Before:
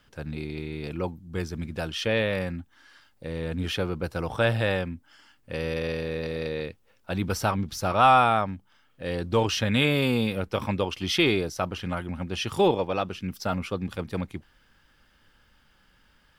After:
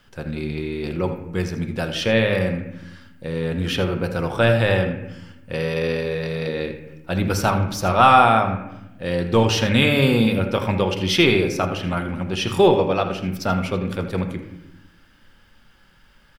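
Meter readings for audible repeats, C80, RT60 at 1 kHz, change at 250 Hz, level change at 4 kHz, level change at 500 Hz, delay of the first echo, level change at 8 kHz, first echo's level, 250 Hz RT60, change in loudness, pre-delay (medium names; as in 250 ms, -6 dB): 1, 9.0 dB, 0.85 s, +7.0 dB, +5.5 dB, +6.5 dB, 81 ms, +5.5 dB, -14.5 dB, 1.5 s, +6.5 dB, 4 ms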